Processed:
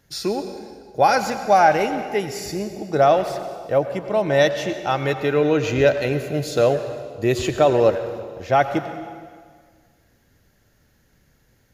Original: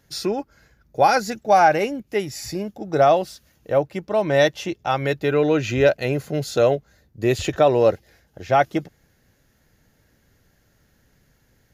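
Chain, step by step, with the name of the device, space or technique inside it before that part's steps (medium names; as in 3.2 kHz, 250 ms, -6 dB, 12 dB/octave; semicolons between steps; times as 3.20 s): saturated reverb return (on a send at -7.5 dB: reverberation RT60 1.7 s, pre-delay 85 ms + saturation -13.5 dBFS, distortion -13 dB)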